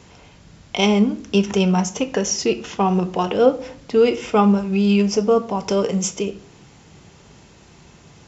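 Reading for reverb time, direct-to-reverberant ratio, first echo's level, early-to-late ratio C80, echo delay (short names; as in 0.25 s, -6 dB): 0.60 s, 10.0 dB, none, 19.5 dB, none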